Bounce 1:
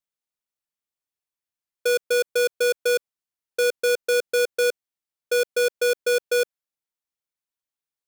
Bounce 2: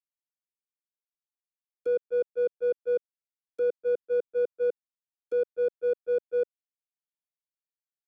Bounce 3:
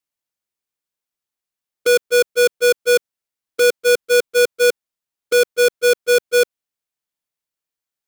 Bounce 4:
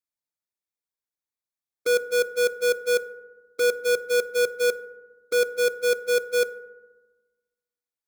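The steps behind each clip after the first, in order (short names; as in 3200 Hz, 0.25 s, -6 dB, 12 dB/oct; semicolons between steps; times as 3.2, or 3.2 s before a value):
treble ducked by the level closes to 480 Hz, closed at -24.5 dBFS; gate -23 dBFS, range -33 dB; high shelf 5600 Hz +8 dB; gain +5 dB
half-waves squared off; gain +8.5 dB
Butterworth band-stop 2900 Hz, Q 4; FDN reverb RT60 1.2 s, low-frequency decay 1.35×, high-frequency decay 0.35×, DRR 13 dB; gain -8.5 dB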